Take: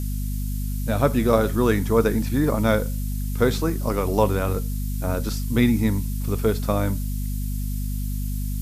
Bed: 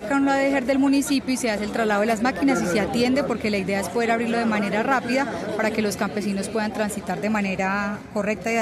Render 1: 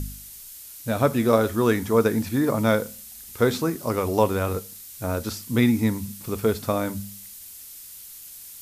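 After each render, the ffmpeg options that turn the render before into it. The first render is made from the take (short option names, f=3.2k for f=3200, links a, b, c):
-af "bandreject=f=50:t=h:w=4,bandreject=f=100:t=h:w=4,bandreject=f=150:t=h:w=4,bandreject=f=200:t=h:w=4,bandreject=f=250:t=h:w=4"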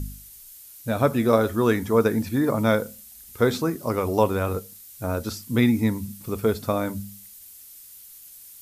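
-af "afftdn=nr=6:nf=-43"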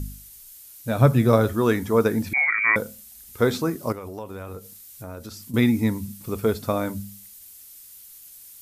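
-filter_complex "[0:a]asettb=1/sr,asplit=3[a][b][c];[a]atrim=end=0.984[d];[b]atrim=start=0.98:end=1.53,asetpts=PTS-STARTPTS,afade=t=in:d=0.004:c=qsin,afade=t=out:st=0.546:d=0.004:c=qsin,equalizer=f=130:t=o:w=0.59:g=12.5[e];[c]atrim=start=1.526[f];[d][e]acrossfade=d=0.004:c1=hsin:c2=qsin[g];[g][f]acrossfade=d=0.004:c1=qsin:c2=hsin,asettb=1/sr,asplit=3[h][i][j];[h]atrim=end=2.334[k];[i]atrim=start=2.33:end=2.76,asetpts=PTS-STARTPTS,afade=t=in:d=0.004:c=qsin,afade=t=out:st=0.426:d=0.004:c=qsin,lowpass=f=2.1k:t=q:w=0.5098,lowpass=f=2.1k:t=q:w=0.6013,lowpass=f=2.1k:t=q:w=0.9,lowpass=f=2.1k:t=q:w=2.563,afreqshift=-2500[l];[j]atrim=start=2.756[m];[k][l]acrossfade=d=0.004:c1=hsin:c2=qsin[n];[n][m]acrossfade=d=0.004:c1=qsin:c2=hsin,asettb=1/sr,asplit=3[o][p][q];[o]atrim=end=3.924[r];[p]atrim=start=3.92:end=5.54,asetpts=PTS-STARTPTS,afade=t=in:d=0.004:c=qsin,afade=t=out:st=1.616:d=0.004:c=qsin,acompressor=threshold=-36dB:ratio=3:attack=3.2:release=140:knee=1:detection=peak[s];[q]atrim=start=5.536[t];[r][s]acrossfade=d=0.004:c1=hsin:c2=qsin[u];[u][t]acrossfade=d=0.004:c1=qsin:c2=hsin"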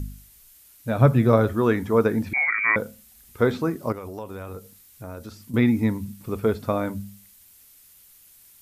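-filter_complex "[0:a]acrossover=split=3100[a][b];[b]acompressor=threshold=-49dB:ratio=4:attack=1:release=60[c];[a][c]amix=inputs=2:normalize=0"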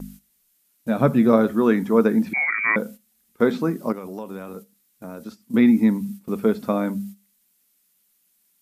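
-af "agate=range=-13dB:threshold=-40dB:ratio=16:detection=peak,lowshelf=f=140:t=q:w=3:g=-10.5"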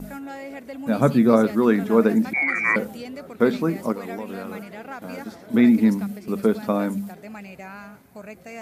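-filter_complex "[1:a]volume=-15.5dB[a];[0:a][a]amix=inputs=2:normalize=0"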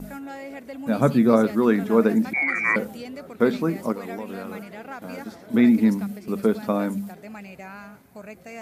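-af "volume=-1dB"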